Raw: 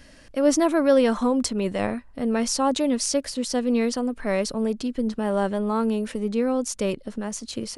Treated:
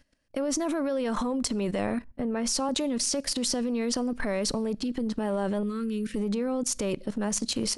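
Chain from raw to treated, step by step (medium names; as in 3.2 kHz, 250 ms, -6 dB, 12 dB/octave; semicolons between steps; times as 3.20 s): gate with hold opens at -36 dBFS; in parallel at +1 dB: peak limiter -16.5 dBFS, peak gain reduction 9.5 dB; on the sum: compression 5:1, threshold -23 dBFS, peak gain reduction 11.5 dB; transient shaper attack -7 dB, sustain +1 dB; level held to a coarse grid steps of 16 dB; 5.63–6.16 s: Butterworth band-stop 770 Hz, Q 0.73; on a send at -22.5 dB: reverberation RT60 0.45 s, pre-delay 3 ms; 2.04–2.69 s: on the sum: three bands expanded up and down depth 40%; trim +4 dB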